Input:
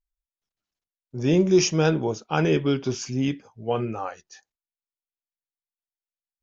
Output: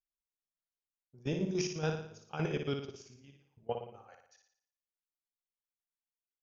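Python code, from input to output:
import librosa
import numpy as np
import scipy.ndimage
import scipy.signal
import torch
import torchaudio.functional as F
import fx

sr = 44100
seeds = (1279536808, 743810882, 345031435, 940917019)

p1 = fx.peak_eq(x, sr, hz=290.0, db=-6.0, octaves=0.48)
p2 = fx.level_steps(p1, sr, step_db=24)
p3 = fx.chopper(p2, sr, hz=7.1, depth_pct=60, duty_pct=45)
p4 = p3 + fx.room_flutter(p3, sr, wall_m=9.9, rt60_s=0.61, dry=0)
y = F.gain(torch.from_numpy(p4), -7.5).numpy()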